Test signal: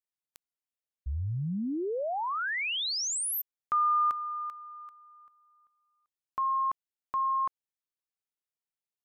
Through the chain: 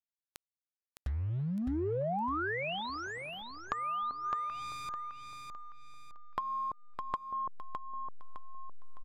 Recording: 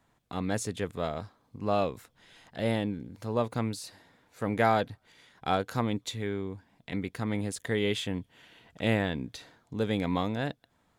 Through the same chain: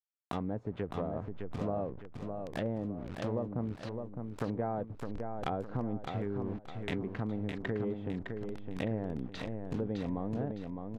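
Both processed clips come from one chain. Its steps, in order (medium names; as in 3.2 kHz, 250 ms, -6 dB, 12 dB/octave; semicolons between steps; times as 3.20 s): send-on-delta sampling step -42.5 dBFS; low-pass that closes with the level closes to 700 Hz, closed at -28 dBFS; treble shelf 4.9 kHz -5.5 dB; compression 4:1, threshold -44 dBFS; feedback delay 610 ms, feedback 37%, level -5.5 dB; trim +9 dB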